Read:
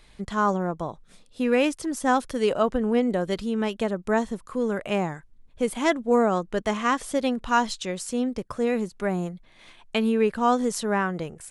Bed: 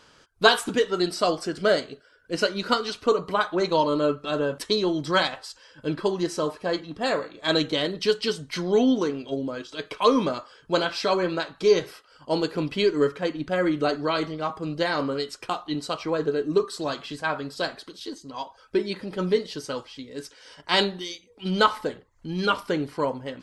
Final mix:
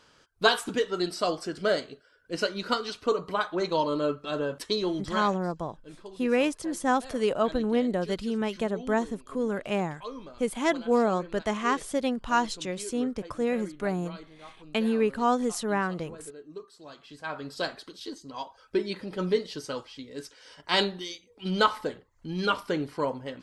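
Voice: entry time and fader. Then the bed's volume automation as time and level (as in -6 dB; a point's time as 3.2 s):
4.80 s, -3.0 dB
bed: 4.95 s -4.5 dB
5.53 s -20 dB
16.79 s -20 dB
17.53 s -3 dB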